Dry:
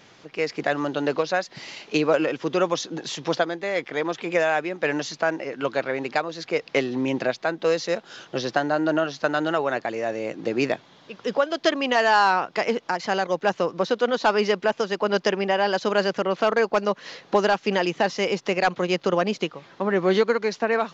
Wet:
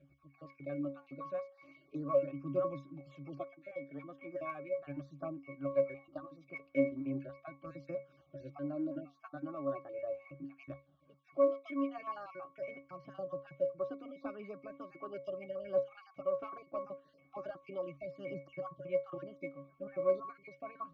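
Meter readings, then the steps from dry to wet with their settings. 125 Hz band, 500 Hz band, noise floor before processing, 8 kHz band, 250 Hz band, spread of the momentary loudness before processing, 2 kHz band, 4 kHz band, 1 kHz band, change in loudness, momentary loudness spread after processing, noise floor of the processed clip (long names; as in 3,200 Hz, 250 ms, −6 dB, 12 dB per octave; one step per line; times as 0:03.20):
−13.5 dB, −14.0 dB, −53 dBFS, can't be measured, −14.5 dB, 7 LU, −27.0 dB, below −35 dB, −22.0 dB, −15.5 dB, 16 LU, −68 dBFS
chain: time-frequency cells dropped at random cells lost 38%
resonances in every octave C#, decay 0.27 s
phase shifter 0.38 Hz, delay 4.6 ms, feedback 50%
level −1 dB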